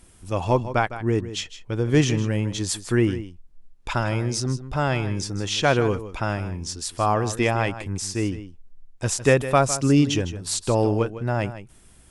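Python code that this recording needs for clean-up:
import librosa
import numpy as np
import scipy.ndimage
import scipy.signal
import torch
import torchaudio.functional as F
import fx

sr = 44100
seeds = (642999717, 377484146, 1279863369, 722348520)

y = fx.fix_echo_inverse(x, sr, delay_ms=157, level_db=-13.0)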